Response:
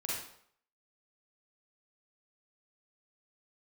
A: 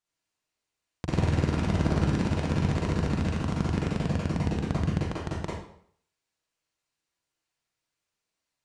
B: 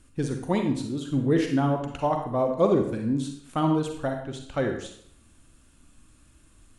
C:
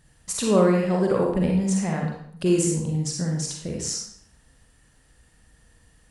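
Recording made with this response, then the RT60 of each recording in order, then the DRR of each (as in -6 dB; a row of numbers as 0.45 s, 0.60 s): A; 0.65 s, 0.65 s, 0.65 s; -6.0 dB, 3.5 dB, -1.0 dB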